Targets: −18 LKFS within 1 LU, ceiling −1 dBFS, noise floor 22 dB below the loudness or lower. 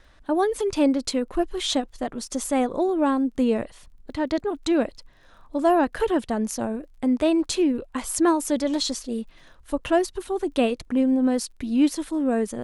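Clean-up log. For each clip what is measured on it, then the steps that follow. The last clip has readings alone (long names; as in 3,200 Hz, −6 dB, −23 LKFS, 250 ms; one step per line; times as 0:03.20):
crackle rate 25 per second; integrated loudness −24.0 LKFS; sample peak −9.0 dBFS; target loudness −18.0 LKFS
→ click removal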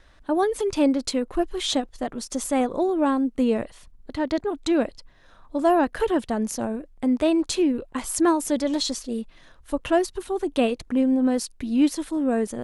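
crackle rate 0 per second; integrated loudness −24.5 LKFS; sample peak −9.0 dBFS; target loudness −18.0 LKFS
→ level +6.5 dB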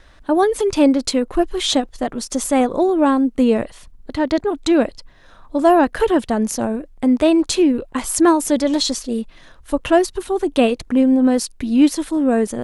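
integrated loudness −18.0 LKFS; sample peak −2.5 dBFS; background noise floor −47 dBFS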